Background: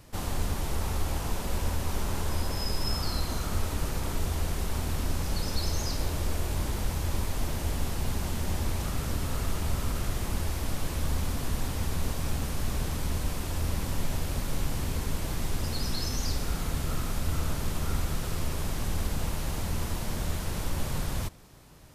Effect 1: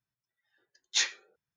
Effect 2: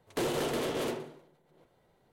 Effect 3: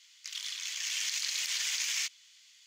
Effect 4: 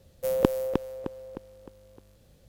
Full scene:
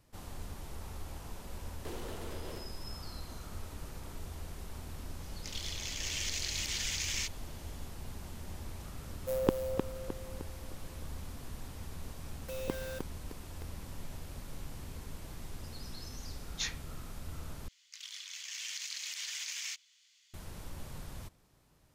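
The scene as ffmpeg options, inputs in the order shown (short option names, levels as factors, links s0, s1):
-filter_complex "[3:a]asplit=2[s0][s1];[4:a]asplit=2[s2][s3];[0:a]volume=0.2[s4];[s3]acrusher=bits=4:mix=0:aa=0.000001[s5];[s4]asplit=2[s6][s7];[s6]atrim=end=17.684[s8];[s1]atrim=end=2.66,asetpts=PTS-STARTPTS,volume=0.422[s9];[s7]atrim=start=20.336[s10];[2:a]atrim=end=2.12,asetpts=PTS-STARTPTS,volume=0.2,afade=t=in:d=0.004:c=hsin,afade=t=out:st=2.116:d=0.004:c=hsin,adelay=1680[s11];[s0]atrim=end=2.66,asetpts=PTS-STARTPTS,volume=0.668,afade=t=in:d=0.004:c=hsin,afade=t=out:st=2.656:d=0.004:c=hsin,adelay=5200[s12];[s2]atrim=end=2.48,asetpts=PTS-STARTPTS,volume=0.473,afade=t=in:d=0.004:c=hsin,afade=t=out:st=2.476:d=0.004:c=hsin,adelay=9040[s13];[s5]atrim=end=2.48,asetpts=PTS-STARTPTS,volume=0.178,afade=t=in:d=0.004:c=hsin,afade=t=out:st=2.476:d=0.004:c=hsin,adelay=12250[s14];[1:a]atrim=end=1.56,asetpts=PTS-STARTPTS,volume=0.335,afade=t=in:d=0.004:c=hsin,afade=t=out:st=1.556:d=0.004:c=hsin,adelay=15640[s15];[s8][s9]acrossfade=d=0.004:c1=hsin:c2=hsin[s16];[s16][s10]acrossfade=d=0.004:c1=hsin:c2=hsin[s17];[s17][s11][s12][s13][s14][s15]amix=inputs=6:normalize=0"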